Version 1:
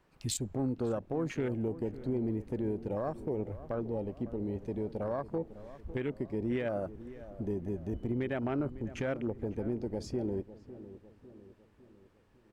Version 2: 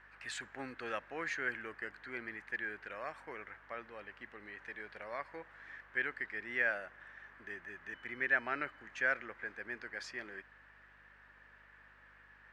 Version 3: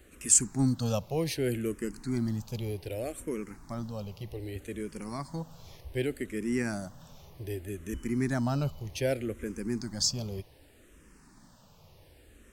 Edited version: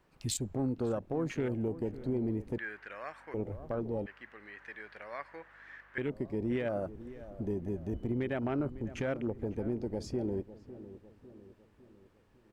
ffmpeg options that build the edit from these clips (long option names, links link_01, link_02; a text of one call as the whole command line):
ffmpeg -i take0.wav -i take1.wav -filter_complex "[1:a]asplit=2[link_01][link_02];[0:a]asplit=3[link_03][link_04][link_05];[link_03]atrim=end=2.582[link_06];[link_01]atrim=start=2.578:end=3.342[link_07];[link_04]atrim=start=3.338:end=4.062[link_08];[link_02]atrim=start=4.058:end=5.982[link_09];[link_05]atrim=start=5.978[link_10];[link_06][link_07]acrossfade=duration=0.004:curve1=hsin:curve2=hsin[link_11];[link_11][link_08]acrossfade=duration=0.004:curve1=hsin:curve2=hsin[link_12];[link_12][link_09]acrossfade=duration=0.004:curve1=hsin:curve2=hsin[link_13];[link_13][link_10]acrossfade=duration=0.004:curve1=hsin:curve2=hsin" out.wav